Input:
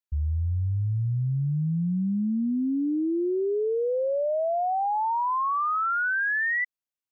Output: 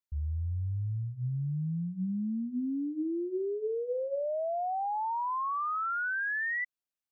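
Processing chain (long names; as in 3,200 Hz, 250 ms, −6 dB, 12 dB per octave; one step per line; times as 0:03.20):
brickwall limiter −26 dBFS, peak gain reduction 3.5 dB
mains-hum notches 60/120/180/240/300/360/420/480/540 Hz
level −3 dB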